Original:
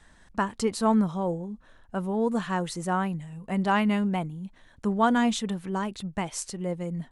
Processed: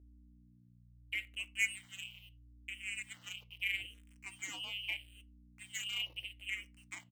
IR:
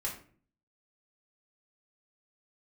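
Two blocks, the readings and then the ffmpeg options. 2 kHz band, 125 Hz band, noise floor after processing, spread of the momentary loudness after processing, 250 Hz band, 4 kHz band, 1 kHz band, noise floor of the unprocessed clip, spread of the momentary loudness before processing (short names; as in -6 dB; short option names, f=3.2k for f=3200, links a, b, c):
-3.5 dB, -26.5 dB, -63 dBFS, 16 LU, -38.0 dB, -0.5 dB, -34.0 dB, -57 dBFS, 13 LU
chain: -filter_complex "[0:a]lowpass=f=2.6k:t=q:w=0.5098,lowpass=f=2.6k:t=q:w=0.6013,lowpass=f=2.6k:t=q:w=0.9,lowpass=f=2.6k:t=q:w=2.563,afreqshift=-3100,acontrast=85,asplit=3[a][b][c];[a]bandpass=f=300:t=q:w=8,volume=0dB[d];[b]bandpass=f=870:t=q:w=8,volume=-6dB[e];[c]bandpass=f=2.24k:t=q:w=8,volume=-9dB[f];[d][e][f]amix=inputs=3:normalize=0,tremolo=f=210:d=0.824,highpass=130,adynamicsmooth=sensitivity=7.5:basefreq=1.5k,equalizer=f=920:w=1.6:g=-14.5,acrossover=split=180[g][h];[h]adelay=740[i];[g][i]amix=inputs=2:normalize=0,aeval=exprs='val(0)*gte(abs(val(0)),0.00112)':c=same,asplit=2[j][k];[1:a]atrim=start_sample=2205,asetrate=79380,aresample=44100[l];[k][l]afir=irnorm=-1:irlink=0,volume=-7dB[m];[j][m]amix=inputs=2:normalize=0,aeval=exprs='val(0)+0.00112*(sin(2*PI*60*n/s)+sin(2*PI*2*60*n/s)/2+sin(2*PI*3*60*n/s)/3+sin(2*PI*4*60*n/s)/4+sin(2*PI*5*60*n/s)/5)':c=same,asplit=2[n][o];[o]afreqshift=-0.78[p];[n][p]amix=inputs=2:normalize=1,volume=2.5dB"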